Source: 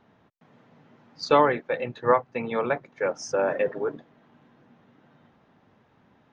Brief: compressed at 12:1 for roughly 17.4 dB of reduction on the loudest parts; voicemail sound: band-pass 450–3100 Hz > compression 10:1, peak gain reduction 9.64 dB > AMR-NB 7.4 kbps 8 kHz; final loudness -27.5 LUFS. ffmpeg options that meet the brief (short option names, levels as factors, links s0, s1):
-af "acompressor=threshold=0.0282:ratio=12,highpass=450,lowpass=3100,acompressor=threshold=0.0112:ratio=10,volume=8.91" -ar 8000 -c:a libopencore_amrnb -b:a 7400